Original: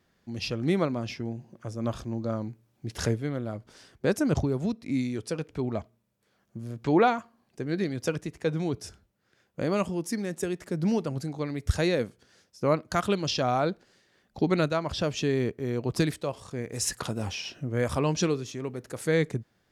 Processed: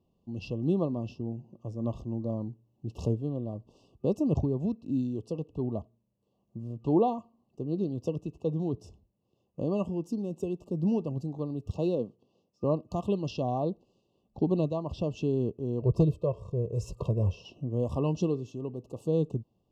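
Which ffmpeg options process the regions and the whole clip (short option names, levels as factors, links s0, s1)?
-filter_complex "[0:a]asettb=1/sr,asplit=3[s0][s1][s2];[s0]atrim=end=11.684[s3];[s1]atrim=start=11.68:end=12.64,asetpts=PTS-STARTPTS,afade=t=in:d=0.004:c=qsin,afade=t=out:st=0.956:d=0.004:c=qsin,adynamicsmooth=sensitivity=6:basefreq=5000,highpass=140[s4];[s2]atrim=start=12.636[s5];[s3][s4]acrossfade=d=0.004:c1=hsin:c2=qsin[s6];[s6][s5]acrossfade=d=0.004:c1=qsin:c2=hsin,asettb=1/sr,asplit=3[s7][s8][s9];[s7]atrim=end=15.824[s10];[s8]atrim=start=15.82:end=17.45,asetpts=PTS-STARTPTS,afade=t=in:d=0.004:c=qsin,afade=t=out:st=1.626:d=0.004:c=qsin,tiltshelf=f=730:g=6,aecho=1:1:1.9:0.79,atrim=end_sample=71883,asoftclip=type=hard:threshold=0.224[s11];[s9]atrim=start=17.446[s12];[s10][s11]acrossfade=d=0.004:c1=hsin:c2=qsin[s13];[s13][s12]acrossfade=d=0.004:c1=qsin:c2=hsin,superequalizer=12b=2.24:16b=0.447,afftfilt=real='re*(1-between(b*sr/4096,1200,2600))':imag='im*(1-between(b*sr/4096,1200,2600))':win_size=4096:overlap=0.75,tiltshelf=f=1200:g=8.5,volume=0.355"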